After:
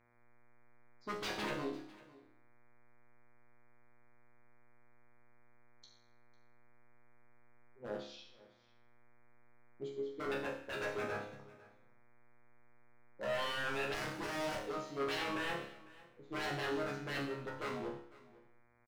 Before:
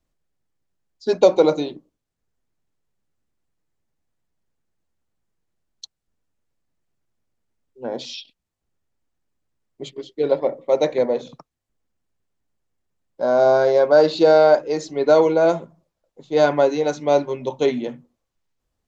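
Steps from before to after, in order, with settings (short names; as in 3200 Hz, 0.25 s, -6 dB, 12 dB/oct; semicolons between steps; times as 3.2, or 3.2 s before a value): tilt -2.5 dB/oct; wavefolder -18 dBFS; resonator bank C#2 fifth, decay 0.62 s; echo 0.5 s -21 dB; buzz 120 Hz, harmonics 20, -71 dBFS -2 dB/oct; 13.94–14.73 running maximum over 9 samples; gain -1.5 dB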